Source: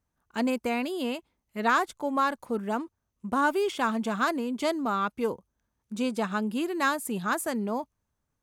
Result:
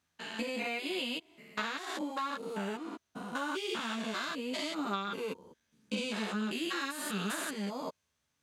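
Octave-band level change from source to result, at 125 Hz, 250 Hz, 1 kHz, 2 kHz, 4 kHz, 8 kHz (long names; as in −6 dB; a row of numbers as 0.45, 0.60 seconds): −4.5, −8.0, −10.5, −6.0, +1.5, −3.0 decibels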